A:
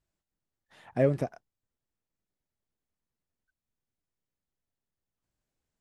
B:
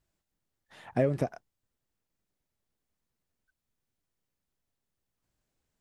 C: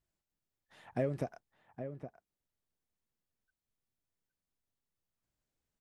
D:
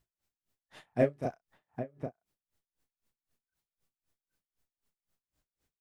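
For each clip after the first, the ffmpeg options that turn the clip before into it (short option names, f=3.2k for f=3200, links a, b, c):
-af "acompressor=threshold=-26dB:ratio=6,volume=4dB"
-filter_complex "[0:a]asplit=2[a][b];[b]adelay=816.3,volume=-9dB,highshelf=f=4k:g=-18.4[c];[a][c]amix=inputs=2:normalize=0,volume=-7dB"
-filter_complex "[0:a]asplit=2[a][b];[b]adelay=34,volume=-6dB[c];[a][c]amix=inputs=2:normalize=0,aeval=exprs='val(0)*pow(10,-31*(0.5-0.5*cos(2*PI*3.9*n/s))/20)':c=same,volume=8.5dB"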